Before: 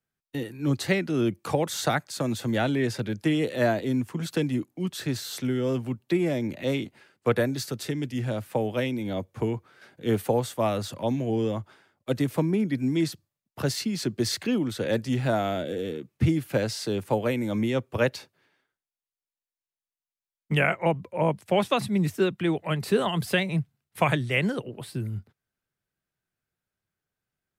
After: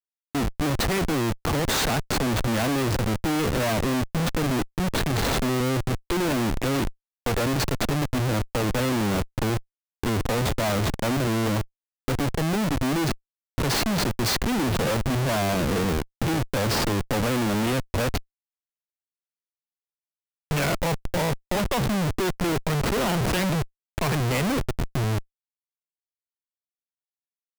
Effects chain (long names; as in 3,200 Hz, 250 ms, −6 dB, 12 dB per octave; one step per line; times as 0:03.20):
comparator with hysteresis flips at −32 dBFS
level +4.5 dB